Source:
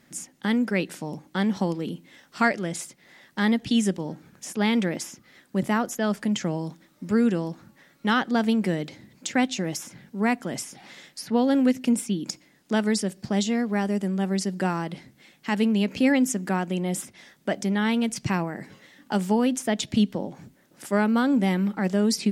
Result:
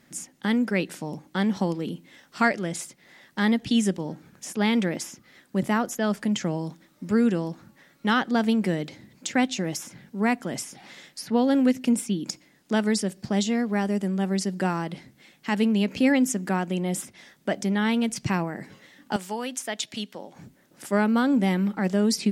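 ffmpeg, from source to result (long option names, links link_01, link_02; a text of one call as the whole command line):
ffmpeg -i in.wav -filter_complex "[0:a]asettb=1/sr,asplit=3[link_01][link_02][link_03];[link_01]atrim=end=19.164[link_04];[link_02]atrim=start=19.16:end=20.36,asetpts=PTS-STARTPTS,afade=type=in:duration=0.004:curve=qsin,afade=type=out:start_time=1.196:duration=0.004:curve=qsin,highpass=frequency=1100:poles=1[link_05];[link_03]atrim=start=20.356[link_06];[link_04][link_05]acrossfade=duration=0.004:curve1=hsin:curve2=qsin[link_07];[link_07][link_06]acrossfade=duration=0.004:curve1=qsin:curve2=hsin" out.wav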